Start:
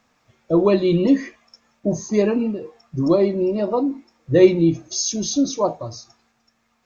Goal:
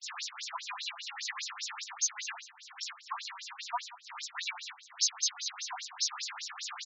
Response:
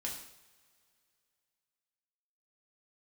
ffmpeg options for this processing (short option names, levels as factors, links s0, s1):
-filter_complex "[0:a]aeval=exprs='val(0)+0.5*0.075*sgn(val(0))':c=same,highpass=740,agate=range=0.00447:threshold=0.0355:ratio=16:detection=peak,highshelf=f=2800:g=10,aeval=exprs='(tanh(6.31*val(0)+0.55)-tanh(0.55))/6.31':c=same,aeval=exprs='0.168*(abs(mod(val(0)/0.168+3,4)-2)-1)':c=same,aecho=1:1:90|180|270|360|450|540:0.224|0.128|0.0727|0.0415|0.0236|0.0135,asplit=2[s0][s1];[1:a]atrim=start_sample=2205,atrim=end_sample=3528[s2];[s1][s2]afir=irnorm=-1:irlink=0,volume=0.447[s3];[s0][s3]amix=inputs=2:normalize=0,afftfilt=real='re*between(b*sr/1024,950*pow(5500/950,0.5+0.5*sin(2*PI*5*pts/sr))/1.41,950*pow(5500/950,0.5+0.5*sin(2*PI*5*pts/sr))*1.41)':imag='im*between(b*sr/1024,950*pow(5500/950,0.5+0.5*sin(2*PI*5*pts/sr))/1.41,950*pow(5500/950,0.5+0.5*sin(2*PI*5*pts/sr))*1.41)':win_size=1024:overlap=0.75,volume=0.531"